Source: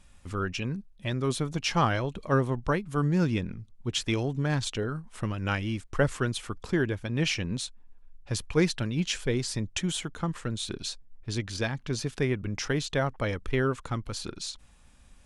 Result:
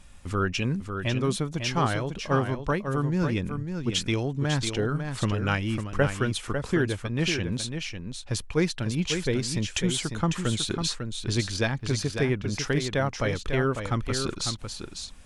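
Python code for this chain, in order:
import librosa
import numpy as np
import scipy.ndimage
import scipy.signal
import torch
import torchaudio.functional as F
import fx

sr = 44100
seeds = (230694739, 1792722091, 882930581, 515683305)

y = fx.rider(x, sr, range_db=4, speed_s=0.5)
y = y + 10.0 ** (-7.0 / 20.0) * np.pad(y, (int(549 * sr / 1000.0), 0))[:len(y)]
y = y * 10.0 ** (2.0 / 20.0)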